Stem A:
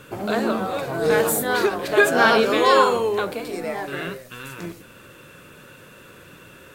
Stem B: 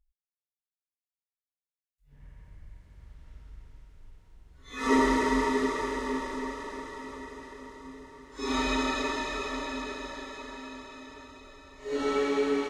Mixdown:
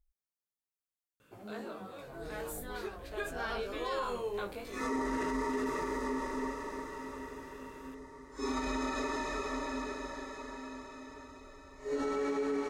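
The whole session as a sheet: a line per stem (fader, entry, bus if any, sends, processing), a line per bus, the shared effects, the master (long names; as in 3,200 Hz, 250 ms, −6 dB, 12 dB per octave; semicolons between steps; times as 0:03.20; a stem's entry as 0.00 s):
0:03.70 −17.5 dB → 0:04.49 −10.5 dB, 1.20 s, no send, chorus effect 0.54 Hz, delay 18.5 ms, depth 2.2 ms
−1.5 dB, 0.00 s, no send, parametric band 3,200 Hz −10 dB 0.84 octaves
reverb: not used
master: brickwall limiter −26 dBFS, peak gain reduction 11 dB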